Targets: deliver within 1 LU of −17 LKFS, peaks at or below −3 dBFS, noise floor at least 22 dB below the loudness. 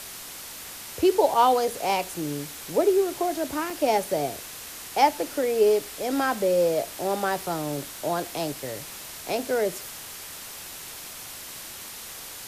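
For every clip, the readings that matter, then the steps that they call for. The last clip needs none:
number of dropouts 2; longest dropout 3.5 ms; background noise floor −40 dBFS; target noise floor −48 dBFS; integrated loudness −25.5 LKFS; sample peak −7.0 dBFS; target loudness −17.0 LKFS
→ repair the gap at 0:01.34/0:03.70, 3.5 ms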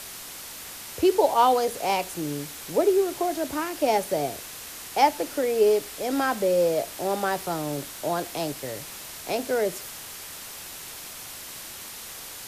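number of dropouts 0; background noise floor −40 dBFS; target noise floor −48 dBFS
→ noise reduction from a noise print 8 dB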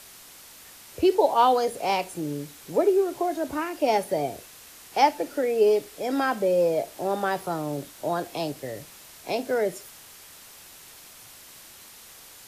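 background noise floor −48 dBFS; integrated loudness −25.5 LKFS; sample peak −7.0 dBFS; target loudness −17.0 LKFS
→ level +8.5 dB
brickwall limiter −3 dBFS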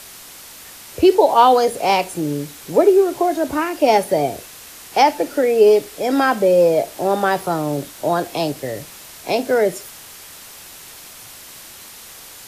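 integrated loudness −17.0 LKFS; sample peak −3.0 dBFS; background noise floor −40 dBFS

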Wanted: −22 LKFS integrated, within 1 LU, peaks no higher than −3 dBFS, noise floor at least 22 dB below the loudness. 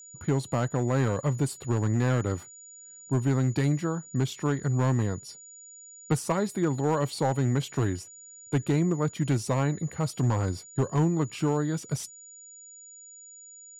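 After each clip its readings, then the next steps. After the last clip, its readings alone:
share of clipped samples 1.1%; peaks flattened at −18.0 dBFS; interfering tone 6,900 Hz; level of the tone −46 dBFS; integrated loudness −28.0 LKFS; sample peak −18.0 dBFS; target loudness −22.0 LKFS
→ clipped peaks rebuilt −18 dBFS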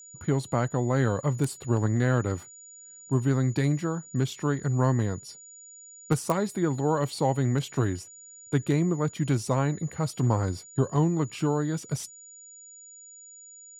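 share of clipped samples 0.0%; interfering tone 6,900 Hz; level of the tone −46 dBFS
→ notch filter 6,900 Hz, Q 30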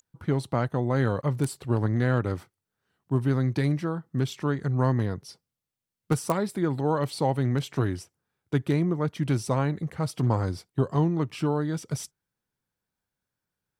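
interfering tone none found; integrated loudness −27.5 LKFS; sample peak −9.5 dBFS; target loudness −22.0 LKFS
→ level +5.5 dB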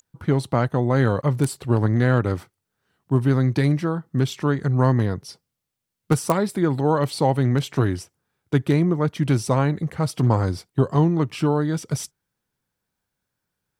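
integrated loudness −22.0 LKFS; sample peak −4.0 dBFS; background noise floor −81 dBFS

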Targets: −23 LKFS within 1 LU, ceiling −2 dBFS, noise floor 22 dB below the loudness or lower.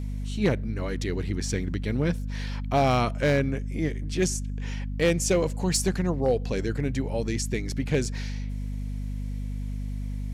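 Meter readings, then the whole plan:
share of clipped samples 0.4%; peaks flattened at −15.0 dBFS; mains hum 50 Hz; hum harmonics up to 250 Hz; level of the hum −29 dBFS; integrated loudness −28.0 LKFS; sample peak −15.0 dBFS; target loudness −23.0 LKFS
→ clipped peaks rebuilt −15 dBFS
hum removal 50 Hz, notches 5
level +5 dB

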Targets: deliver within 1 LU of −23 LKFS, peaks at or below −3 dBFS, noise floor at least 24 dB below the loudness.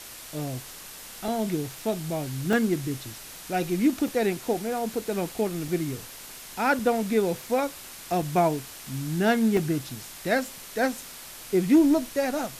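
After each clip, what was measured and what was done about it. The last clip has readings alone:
number of dropouts 7; longest dropout 2.4 ms; background noise floor −43 dBFS; target noise floor −51 dBFS; integrated loudness −26.5 LKFS; sample peak −9.5 dBFS; target loudness −23.0 LKFS
→ repair the gap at 0:01.28/0:02.53/0:04.08/0:05.68/0:06.79/0:08.22/0:09.57, 2.4 ms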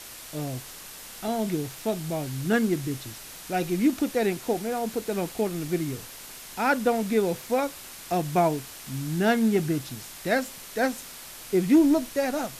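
number of dropouts 0; background noise floor −43 dBFS; target noise floor −51 dBFS
→ broadband denoise 8 dB, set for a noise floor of −43 dBFS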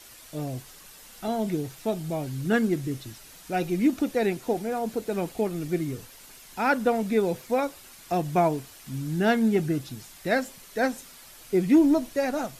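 background noise floor −49 dBFS; target noise floor −51 dBFS
→ broadband denoise 6 dB, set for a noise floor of −49 dBFS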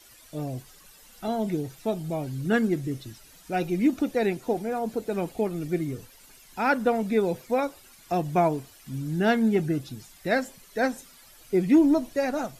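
background noise floor −53 dBFS; integrated loudness −26.5 LKFS; sample peak −10.0 dBFS; target loudness −23.0 LKFS
→ level +3.5 dB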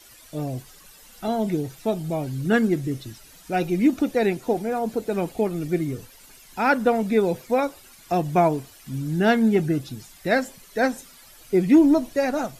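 integrated loudness −23.0 LKFS; sample peak −6.5 dBFS; background noise floor −49 dBFS

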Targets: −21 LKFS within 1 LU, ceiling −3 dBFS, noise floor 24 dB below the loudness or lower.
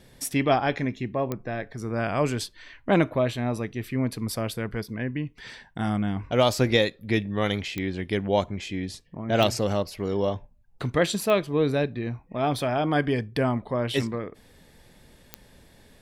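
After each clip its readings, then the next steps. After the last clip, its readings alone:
number of clicks 5; integrated loudness −26.5 LKFS; sample peak −5.5 dBFS; target loudness −21.0 LKFS
→ click removal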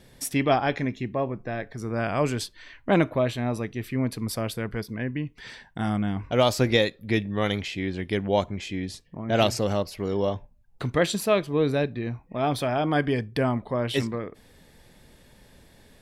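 number of clicks 0; integrated loudness −26.5 LKFS; sample peak −5.5 dBFS; target loudness −21.0 LKFS
→ level +5.5 dB
brickwall limiter −3 dBFS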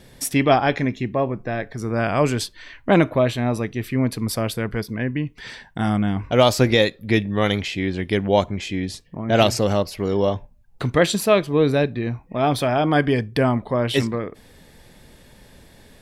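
integrated loudness −21.0 LKFS; sample peak −3.0 dBFS; background noise floor −51 dBFS

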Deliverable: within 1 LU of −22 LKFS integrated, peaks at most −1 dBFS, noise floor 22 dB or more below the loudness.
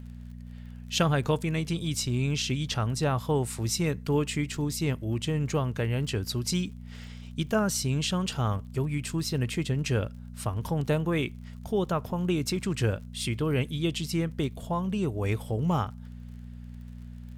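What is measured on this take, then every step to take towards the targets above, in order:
crackle rate 44 per second; mains hum 60 Hz; hum harmonics up to 240 Hz; level of the hum −41 dBFS; integrated loudness −29.0 LKFS; sample peak −11.5 dBFS; target loudness −22.0 LKFS
→ click removal
hum removal 60 Hz, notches 4
level +7 dB

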